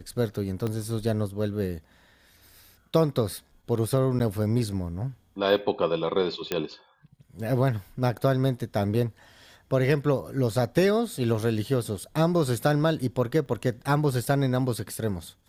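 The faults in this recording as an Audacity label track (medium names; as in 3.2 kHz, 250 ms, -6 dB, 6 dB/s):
0.670000	0.670000	pop -18 dBFS
4.190000	4.200000	dropout 9.7 ms
6.520000	6.520000	pop -11 dBFS
13.460000	13.460000	dropout 2.1 ms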